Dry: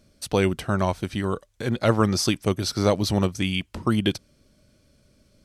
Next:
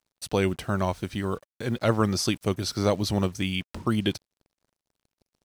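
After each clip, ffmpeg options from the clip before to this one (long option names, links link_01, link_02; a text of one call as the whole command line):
ffmpeg -i in.wav -af "acrusher=bits=7:mix=0:aa=0.5,volume=-3dB" out.wav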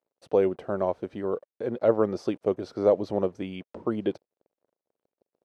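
ffmpeg -i in.wav -af "bandpass=frequency=500:width_type=q:width=2:csg=0,volume=6dB" out.wav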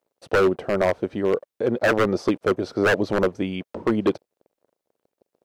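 ffmpeg -i in.wav -af "aeval=exprs='0.106*(abs(mod(val(0)/0.106+3,4)-2)-1)':channel_layout=same,volume=8dB" out.wav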